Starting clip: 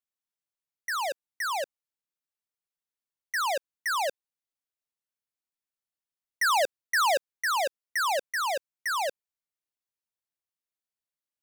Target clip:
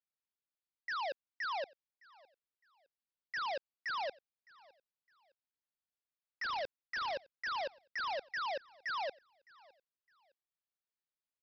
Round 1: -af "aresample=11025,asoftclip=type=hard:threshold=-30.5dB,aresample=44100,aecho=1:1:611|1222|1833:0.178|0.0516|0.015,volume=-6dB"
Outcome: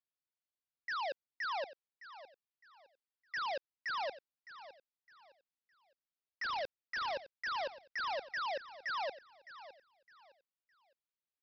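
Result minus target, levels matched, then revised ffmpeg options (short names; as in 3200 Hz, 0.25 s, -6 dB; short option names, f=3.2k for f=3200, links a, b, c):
echo-to-direct +9.5 dB
-af "aresample=11025,asoftclip=type=hard:threshold=-30.5dB,aresample=44100,aecho=1:1:611|1222:0.0596|0.0173,volume=-6dB"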